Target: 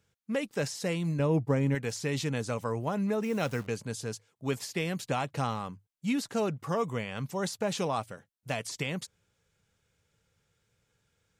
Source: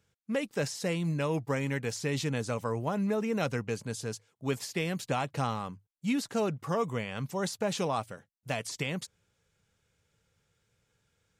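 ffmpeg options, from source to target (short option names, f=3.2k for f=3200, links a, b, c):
-filter_complex "[0:a]asettb=1/sr,asplit=3[a][b][c];[a]atrim=end=1.194[d];[b]atrim=start=1.19:end=1.75,asetpts=PTS-STARTPTS,afade=t=in:d=0.004:c=qsin,afade=t=out:st=0.556:d=0.004:c=qsin,tiltshelf=f=850:g=6.5[e];[c]atrim=start=1.746[f];[d][e]acrossfade=d=0.004:c1=hsin:c2=qsin[g];[g][f]acrossfade=d=0.004:c1=qsin:c2=hsin,asettb=1/sr,asplit=3[h][i][j];[h]atrim=end=3.234[k];[i]atrim=start=3.23:end=3.67,asetpts=PTS-STARTPTS,afade=t=in:d=0.004:c=qsin,afade=t=out:st=0.436:d=0.004:c=qsin,acrusher=bits=9:dc=4:mix=0:aa=0.000001[l];[j]atrim=start=3.666[m];[k][l]acrossfade=d=0.004:c1=hsin:c2=qsin[n];[n][m]acrossfade=d=0.004:c1=qsin:c2=hsin"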